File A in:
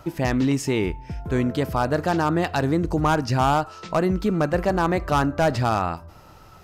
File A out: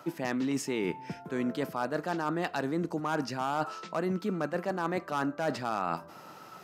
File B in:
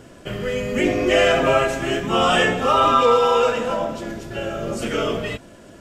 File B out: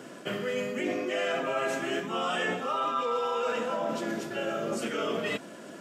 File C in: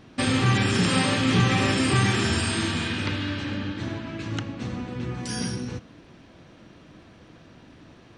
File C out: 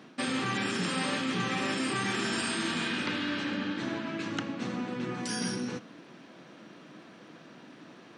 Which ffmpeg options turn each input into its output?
-af "highpass=f=170:w=0.5412,highpass=f=170:w=1.3066,equalizer=f=1.4k:w=1.5:g=2.5,areverse,acompressor=threshold=-28dB:ratio=6,areverse"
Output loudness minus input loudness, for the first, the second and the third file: -10.0, -11.5, -7.0 LU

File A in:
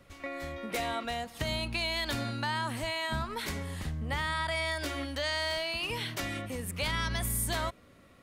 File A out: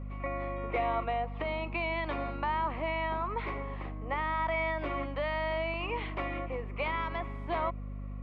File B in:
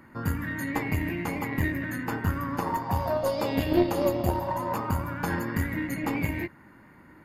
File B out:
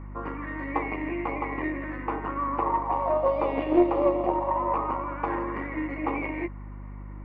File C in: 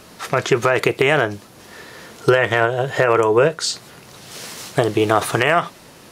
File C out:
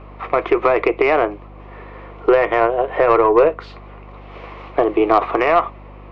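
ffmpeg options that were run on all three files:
-af "highpass=f=300:w=0.5412,highpass=f=300:w=1.3066,equalizer=f=330:t=q:w=4:g=6,equalizer=f=510:t=q:w=4:g=4,equalizer=f=730:t=q:w=4:g=5,equalizer=f=1.1k:t=q:w=4:g=10,equalizer=f=1.6k:t=q:w=4:g=-9,equalizer=f=2.3k:t=q:w=4:g=5,lowpass=f=2.4k:w=0.5412,lowpass=f=2.4k:w=1.3066,aeval=exprs='1.26*(cos(1*acos(clip(val(0)/1.26,-1,1)))-cos(1*PI/2))+0.0891*(cos(5*acos(clip(val(0)/1.26,-1,1)))-cos(5*PI/2))+0.0355*(cos(6*acos(clip(val(0)/1.26,-1,1)))-cos(6*PI/2))+0.02*(cos(7*acos(clip(val(0)/1.26,-1,1)))-cos(7*PI/2))+0.0112*(cos(8*acos(clip(val(0)/1.26,-1,1)))-cos(8*PI/2))':c=same,aeval=exprs='val(0)+0.0178*(sin(2*PI*50*n/s)+sin(2*PI*2*50*n/s)/2+sin(2*PI*3*50*n/s)/3+sin(2*PI*4*50*n/s)/4+sin(2*PI*5*50*n/s)/5)':c=same,volume=-3dB"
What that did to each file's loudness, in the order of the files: -1.0, +1.0, +1.0 LU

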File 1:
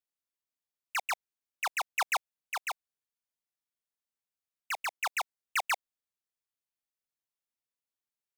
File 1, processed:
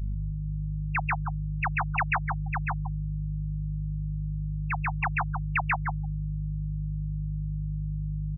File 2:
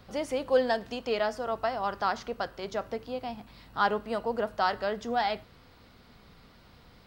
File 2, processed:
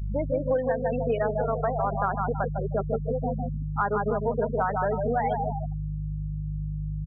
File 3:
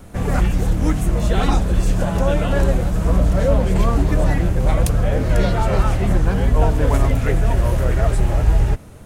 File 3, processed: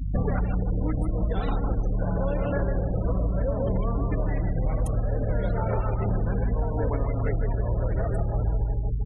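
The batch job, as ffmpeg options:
-filter_complex "[0:a]aeval=exprs='val(0)+0.0224*(sin(2*PI*50*n/s)+sin(2*PI*2*50*n/s)/2+sin(2*PI*3*50*n/s)/3+sin(2*PI*4*50*n/s)/4+sin(2*PI*5*50*n/s)/5)':c=same,asplit=2[a][b];[b]adelay=153,lowpass=f=2.2k:p=1,volume=-4dB,asplit=2[c][d];[d]adelay=153,lowpass=f=2.2k:p=1,volume=0.47,asplit=2[e][f];[f]adelay=153,lowpass=f=2.2k:p=1,volume=0.47,asplit=2[g][h];[h]adelay=153,lowpass=f=2.2k:p=1,volume=0.47,asplit=2[i][j];[j]adelay=153,lowpass=f=2.2k:p=1,volume=0.47,asplit=2[k][l];[l]adelay=153,lowpass=f=2.2k:p=1,volume=0.47[m];[a][c][e][g][i][k][m]amix=inputs=7:normalize=0,afftfilt=real='re*gte(hypot(re,im),0.0708)':imag='im*gte(hypot(re,im),0.0708)':win_size=1024:overlap=0.75,adynamicequalizer=threshold=0.0112:dfrequency=430:dqfactor=3.5:tfrequency=430:tqfactor=3.5:attack=5:release=100:ratio=0.375:range=1.5:mode=boostabove:tftype=bell,bandreject=f=360:w=12,acompressor=threshold=-26dB:ratio=16,volume=5dB"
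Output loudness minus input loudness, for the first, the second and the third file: +3.0, +3.0, -8.5 LU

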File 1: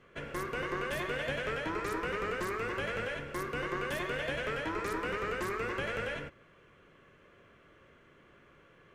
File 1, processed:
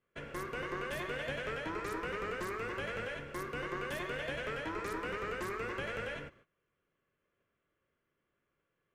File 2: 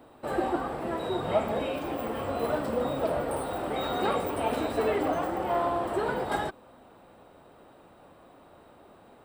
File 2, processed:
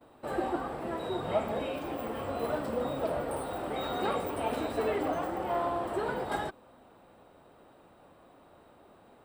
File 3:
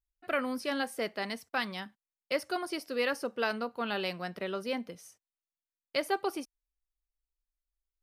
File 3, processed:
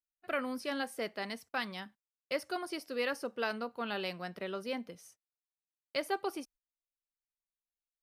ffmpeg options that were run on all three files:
-af "agate=range=-19dB:threshold=-56dB:ratio=16:detection=peak,volume=-3.5dB"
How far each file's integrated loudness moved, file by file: -3.5, -3.5, -3.5 LU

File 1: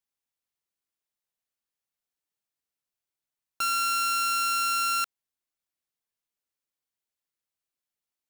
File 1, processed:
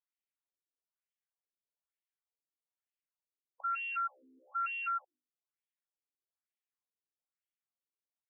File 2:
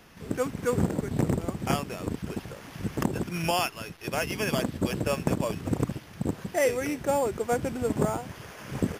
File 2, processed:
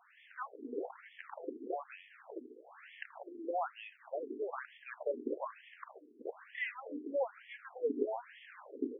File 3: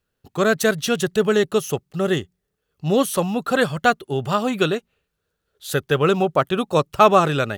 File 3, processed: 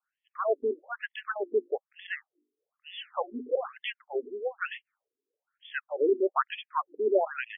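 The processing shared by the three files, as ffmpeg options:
-af "aeval=exprs='if(lt(val(0),0),0.708*val(0),val(0))':c=same,bandreject=f=50:t=h:w=6,bandreject=f=100:t=h:w=6,bandreject=f=150:t=h:w=6,bandreject=f=200:t=h:w=6,bandreject=f=250:t=h:w=6,bandreject=f=300:t=h:w=6,bandreject=f=350:t=h:w=6,afftfilt=real='re*between(b*sr/1024,310*pow(2500/310,0.5+0.5*sin(2*PI*1.1*pts/sr))/1.41,310*pow(2500/310,0.5+0.5*sin(2*PI*1.1*pts/sr))*1.41)':imag='im*between(b*sr/1024,310*pow(2500/310,0.5+0.5*sin(2*PI*1.1*pts/sr))/1.41,310*pow(2500/310,0.5+0.5*sin(2*PI*1.1*pts/sr))*1.41)':win_size=1024:overlap=0.75,volume=-3dB"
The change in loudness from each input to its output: -11.0, -12.0, -11.5 LU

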